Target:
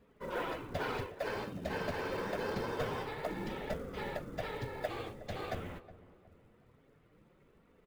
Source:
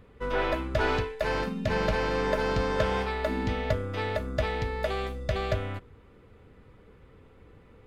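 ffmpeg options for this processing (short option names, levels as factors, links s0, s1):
-filter_complex "[0:a]highpass=76,afftfilt=real='hypot(re,im)*cos(2*PI*random(0))':imag='hypot(re,im)*sin(2*PI*random(1))':win_size=512:overlap=0.75,flanger=delay=4.1:depth=7.7:regen=-32:speed=0.26:shape=triangular,acrusher=bits=6:mode=log:mix=0:aa=0.000001,asplit=2[s0][s1];[s1]adelay=366,lowpass=f=1100:p=1,volume=0.168,asplit=2[s2][s3];[s3]adelay=366,lowpass=f=1100:p=1,volume=0.41,asplit=2[s4][s5];[s5]adelay=366,lowpass=f=1100:p=1,volume=0.41,asplit=2[s6][s7];[s7]adelay=366,lowpass=f=1100:p=1,volume=0.41[s8];[s2][s4][s6][s8]amix=inputs=4:normalize=0[s9];[s0][s9]amix=inputs=2:normalize=0"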